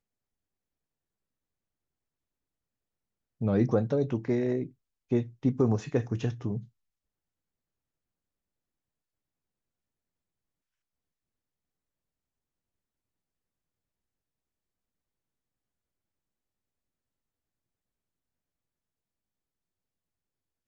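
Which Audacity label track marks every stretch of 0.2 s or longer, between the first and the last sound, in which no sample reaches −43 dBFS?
4.680000	5.110000	silence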